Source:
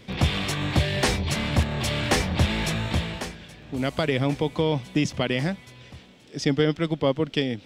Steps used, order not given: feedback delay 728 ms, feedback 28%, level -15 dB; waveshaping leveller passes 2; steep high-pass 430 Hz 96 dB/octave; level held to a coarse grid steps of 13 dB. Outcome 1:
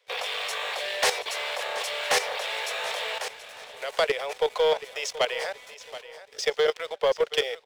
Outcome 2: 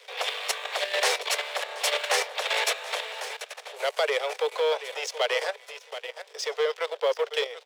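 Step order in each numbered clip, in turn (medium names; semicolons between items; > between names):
steep high-pass > level held to a coarse grid > waveshaping leveller > feedback delay; feedback delay > level held to a coarse grid > waveshaping leveller > steep high-pass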